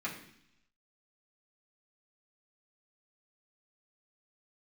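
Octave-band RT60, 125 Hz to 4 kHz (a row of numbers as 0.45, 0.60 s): 0.95, 0.90, 0.70, 0.70, 0.90, 1.0 s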